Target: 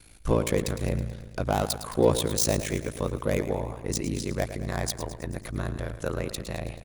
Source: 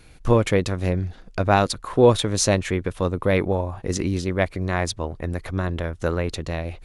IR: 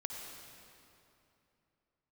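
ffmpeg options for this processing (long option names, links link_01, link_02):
-filter_complex "[0:a]acrossover=split=770[link_01][link_02];[link_02]asoftclip=type=tanh:threshold=-23.5dB[link_03];[link_01][link_03]amix=inputs=2:normalize=0,aemphasis=mode=production:type=50fm,aecho=1:1:109|218|327|436|545|654|763:0.251|0.148|0.0874|0.0516|0.0304|0.018|0.0106,aeval=exprs='val(0)*sin(2*PI*28*n/s)':channel_layout=same,volume=-3dB"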